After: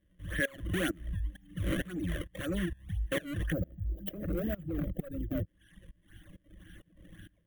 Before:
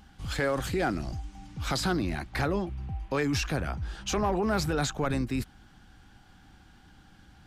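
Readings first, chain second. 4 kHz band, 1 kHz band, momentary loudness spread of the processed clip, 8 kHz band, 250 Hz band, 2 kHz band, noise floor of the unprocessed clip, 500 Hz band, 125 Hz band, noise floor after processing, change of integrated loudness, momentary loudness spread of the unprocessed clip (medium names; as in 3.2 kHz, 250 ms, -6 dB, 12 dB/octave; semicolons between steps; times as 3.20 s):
-9.0 dB, -17.5 dB, 7 LU, -11.5 dB, -4.5 dB, -3.5 dB, -57 dBFS, -7.5 dB, -3.5 dB, -70 dBFS, -5.5 dB, 10 LU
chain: band-stop 1 kHz, Q 20; decimation with a swept rate 29×, swing 160% 1.9 Hz; time-frequency box 3.52–5.46 s, 790–12000 Hz -18 dB; level rider gain up to 11 dB; rippled EQ curve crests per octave 1.2, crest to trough 13 dB; compression 1.5:1, threshold -25 dBFS, peak gain reduction 6 dB; hard clipper -17.5 dBFS, distortion -13 dB; tremolo saw up 2.2 Hz, depth 85%; dynamic bell 1.4 kHz, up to +4 dB, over -41 dBFS, Q 1.4; static phaser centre 2.2 kHz, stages 4; reverb removal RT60 1.2 s; trim -4.5 dB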